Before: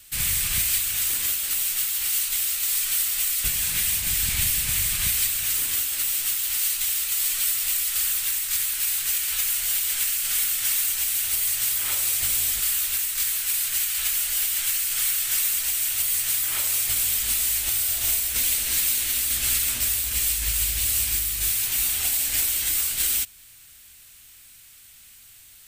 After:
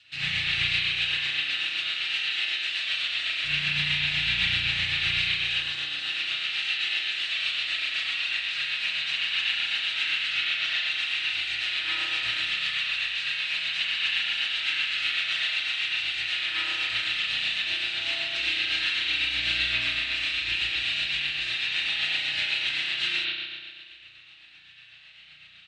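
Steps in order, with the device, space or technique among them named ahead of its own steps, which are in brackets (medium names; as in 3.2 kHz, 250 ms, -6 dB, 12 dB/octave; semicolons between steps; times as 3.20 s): 10.33–10.91 s: low-pass 7.3 kHz 12 dB/octave; combo amplifier with spring reverb and tremolo (spring tank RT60 1.7 s, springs 34 ms, chirp 35 ms, DRR -9 dB; tremolo 7.9 Hz, depth 33%; cabinet simulation 100–4600 Hz, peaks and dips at 210 Hz -7 dB, 450 Hz -10 dB, 1 kHz -5 dB, 1.8 kHz +5 dB, 2.7 kHz +10 dB, 3.9 kHz +9 dB); comb 6.3 ms, depth 48%; 5.62–6.10 s: peaking EQ 2.2 kHz -6 dB 0.77 oct; trim -7.5 dB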